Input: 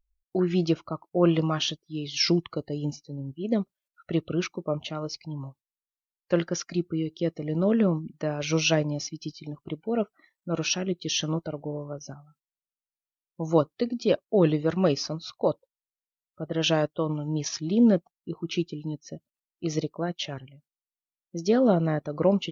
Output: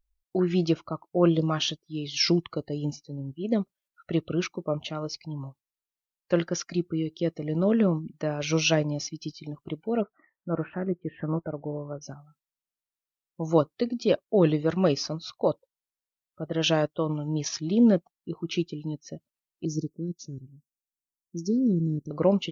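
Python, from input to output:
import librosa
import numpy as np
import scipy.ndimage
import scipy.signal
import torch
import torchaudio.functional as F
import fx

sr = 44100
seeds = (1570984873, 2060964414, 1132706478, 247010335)

y = fx.spec_box(x, sr, start_s=1.28, length_s=0.2, low_hz=660.0, high_hz=3100.0, gain_db=-12)
y = fx.steep_lowpass(y, sr, hz=1900.0, slope=48, at=(10.0, 12.01), fade=0.02)
y = fx.cheby2_bandstop(y, sr, low_hz=640.0, high_hz=3300.0, order=4, stop_db=40, at=(19.65, 22.11))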